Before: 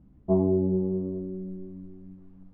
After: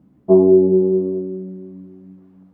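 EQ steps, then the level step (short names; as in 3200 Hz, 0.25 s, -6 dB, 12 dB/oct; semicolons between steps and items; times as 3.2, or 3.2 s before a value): HPF 170 Hz 12 dB/oct; dynamic EQ 380 Hz, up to +8 dB, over -40 dBFS, Q 2.4; +7.0 dB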